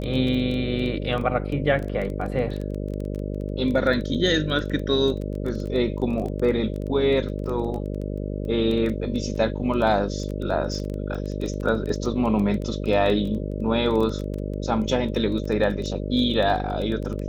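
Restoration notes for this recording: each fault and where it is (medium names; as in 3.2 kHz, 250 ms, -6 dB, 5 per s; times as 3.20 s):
buzz 50 Hz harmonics 12 -29 dBFS
crackle 14 per s -28 dBFS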